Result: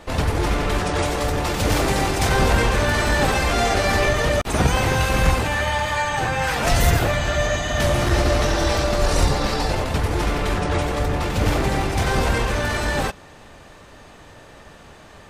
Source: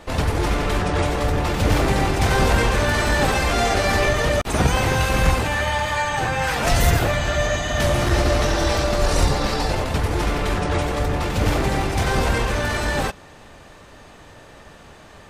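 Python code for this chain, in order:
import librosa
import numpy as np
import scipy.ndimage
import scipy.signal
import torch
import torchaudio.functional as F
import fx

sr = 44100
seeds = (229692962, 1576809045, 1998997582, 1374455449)

y = fx.bass_treble(x, sr, bass_db=-3, treble_db=5, at=(0.78, 2.29))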